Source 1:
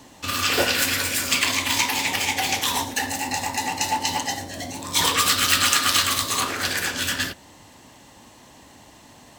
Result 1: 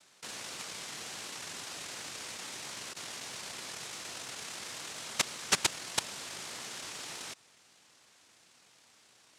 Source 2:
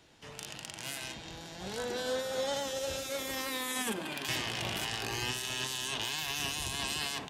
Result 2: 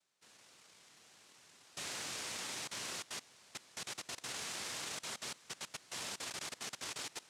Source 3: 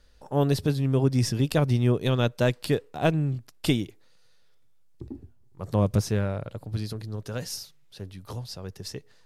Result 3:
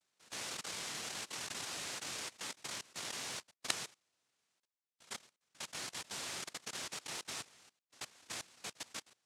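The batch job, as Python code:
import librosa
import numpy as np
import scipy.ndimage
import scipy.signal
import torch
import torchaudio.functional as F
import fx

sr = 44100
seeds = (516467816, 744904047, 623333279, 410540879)

y = fx.lpc_monotone(x, sr, seeds[0], pitch_hz=160.0, order=10)
y = fx.noise_vocoder(y, sr, seeds[1], bands=1)
y = fx.level_steps(y, sr, step_db=20)
y = F.gain(torch.from_numpy(y), -3.0).numpy()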